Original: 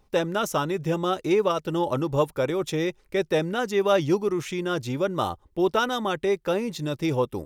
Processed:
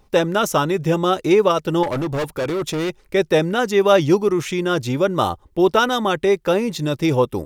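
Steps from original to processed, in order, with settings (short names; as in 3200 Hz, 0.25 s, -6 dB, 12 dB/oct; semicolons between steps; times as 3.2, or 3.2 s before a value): 1.83–3.02 hard clip -26.5 dBFS, distortion -14 dB; gain +7 dB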